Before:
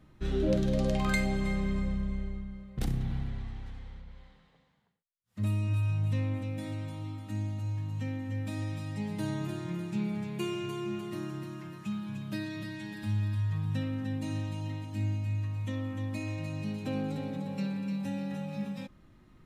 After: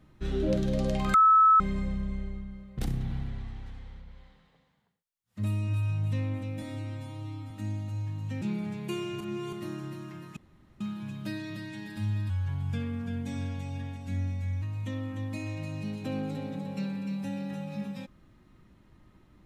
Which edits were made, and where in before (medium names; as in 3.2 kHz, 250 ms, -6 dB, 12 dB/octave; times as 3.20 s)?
1.14–1.60 s: bleep 1.3 kHz -15.5 dBFS
6.62–7.21 s: stretch 1.5×
8.12–9.92 s: delete
10.71–11.03 s: reverse
11.87 s: insert room tone 0.44 s
13.36–15.43 s: speed 89%